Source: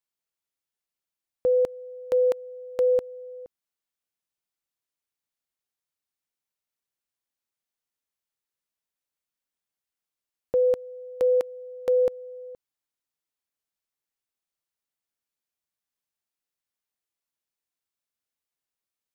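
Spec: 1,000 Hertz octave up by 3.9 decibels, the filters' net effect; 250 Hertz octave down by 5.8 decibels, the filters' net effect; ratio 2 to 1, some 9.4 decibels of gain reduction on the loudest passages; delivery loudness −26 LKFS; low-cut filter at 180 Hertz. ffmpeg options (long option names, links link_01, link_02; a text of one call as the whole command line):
ffmpeg -i in.wav -af "highpass=180,equalizer=frequency=250:width_type=o:gain=-8.5,equalizer=frequency=1000:width_type=o:gain=6,acompressor=threshold=-37dB:ratio=2,volume=9.5dB" out.wav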